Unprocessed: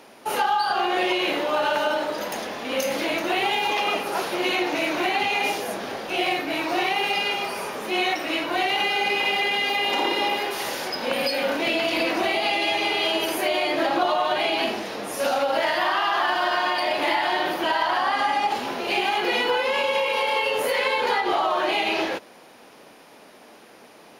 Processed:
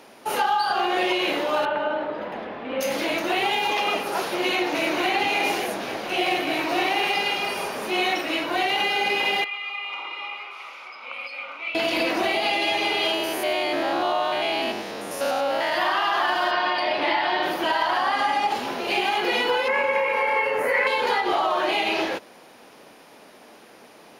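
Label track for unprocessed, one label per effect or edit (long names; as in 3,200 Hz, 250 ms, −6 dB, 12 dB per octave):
1.650000	2.810000	high-frequency loss of the air 470 metres
4.210000	5.130000	delay throw 530 ms, feedback 60%, level −7.5 dB
6.050000	8.210000	single-tap delay 209 ms −6.5 dB
9.440000	11.750000	pair of resonant band-passes 1,700 Hz, apart 0.87 octaves
13.140000	15.720000	spectrum averaged block by block every 100 ms
16.510000	17.430000	Savitzky-Golay smoothing over 15 samples
19.680000	20.870000	high shelf with overshoot 2,600 Hz −8.5 dB, Q 3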